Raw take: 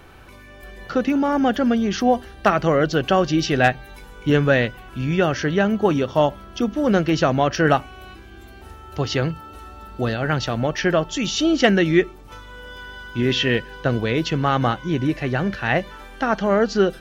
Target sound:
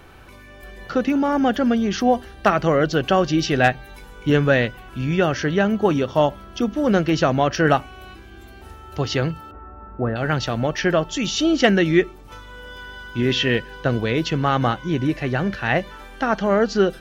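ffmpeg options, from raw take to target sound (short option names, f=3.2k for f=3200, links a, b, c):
-filter_complex "[0:a]asettb=1/sr,asplit=3[a][b][c];[a]atrim=end=9.514[d];[b]atrim=start=9.51:end=10.16,asetpts=PTS-STARTPTS,afade=t=in:d=0.004:c=qsin,afade=t=out:st=0.646:d=0.004:c=qsin,lowpass=f=1.6k:w=0.5412,lowpass=f=1.6k:w=1.3066[e];[c]atrim=start=10.156[f];[d][e]acrossfade=d=0.004:c1=hsin:c2=qsin[g];[g][f]acrossfade=d=0.004:c1=qsin:c2=hsin"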